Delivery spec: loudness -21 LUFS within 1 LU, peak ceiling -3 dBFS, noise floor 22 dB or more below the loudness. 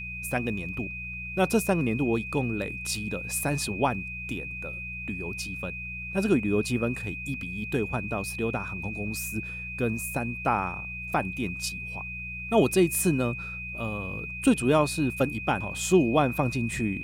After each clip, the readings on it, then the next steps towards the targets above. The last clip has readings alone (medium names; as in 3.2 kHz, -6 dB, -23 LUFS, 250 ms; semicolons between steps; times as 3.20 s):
hum 60 Hz; highest harmonic 180 Hz; hum level -39 dBFS; steady tone 2.5 kHz; tone level -35 dBFS; loudness -28.0 LUFS; peak level -9.0 dBFS; loudness target -21.0 LUFS
-> de-hum 60 Hz, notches 3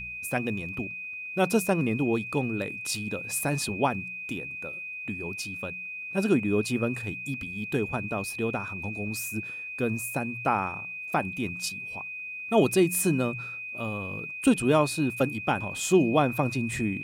hum not found; steady tone 2.5 kHz; tone level -35 dBFS
-> band-stop 2.5 kHz, Q 30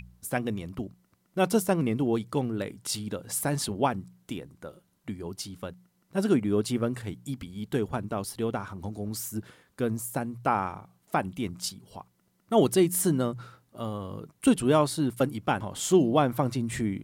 steady tone not found; loudness -28.5 LUFS; peak level -9.5 dBFS; loudness target -21.0 LUFS
-> trim +7.5 dB; peak limiter -3 dBFS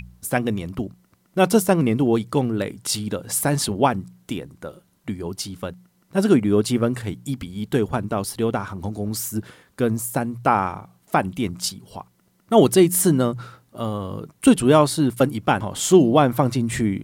loudness -21.0 LUFS; peak level -3.0 dBFS; noise floor -63 dBFS